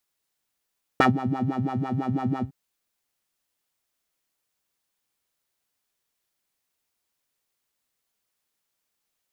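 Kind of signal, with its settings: synth patch with filter wobble C4, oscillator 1 square, oscillator 2 level -9 dB, sub -3 dB, filter bandpass, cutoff 140 Hz, Q 2.5, filter envelope 2.5 oct, filter decay 0.06 s, filter sustain 50%, attack 1.3 ms, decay 0.12 s, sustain -17 dB, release 0.09 s, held 1.42 s, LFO 6 Hz, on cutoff 1.7 oct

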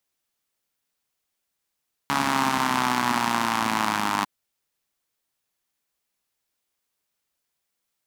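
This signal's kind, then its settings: four-cylinder engine model, changing speed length 2.15 s, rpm 4200, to 3000, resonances 250/940 Hz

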